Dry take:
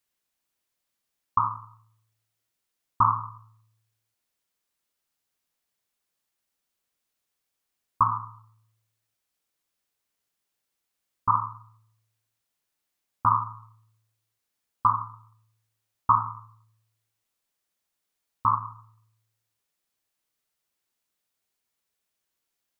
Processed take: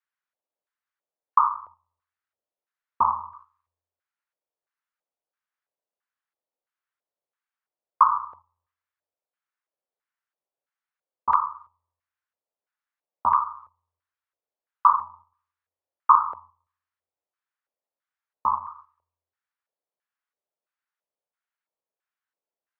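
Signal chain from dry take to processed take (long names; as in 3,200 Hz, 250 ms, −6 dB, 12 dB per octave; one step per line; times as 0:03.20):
noise gate −49 dBFS, range −7 dB
frequency shifter −24 Hz
auto-filter band-pass square 1.5 Hz 550–1,500 Hz
parametric band 930 Hz +3 dB 0.77 octaves
level +8 dB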